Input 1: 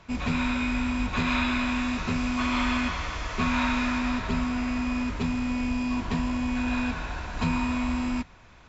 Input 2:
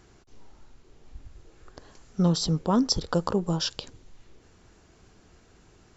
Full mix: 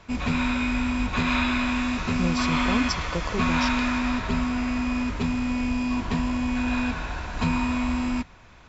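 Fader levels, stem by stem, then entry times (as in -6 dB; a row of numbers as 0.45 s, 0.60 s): +2.0 dB, -5.0 dB; 0.00 s, 0.00 s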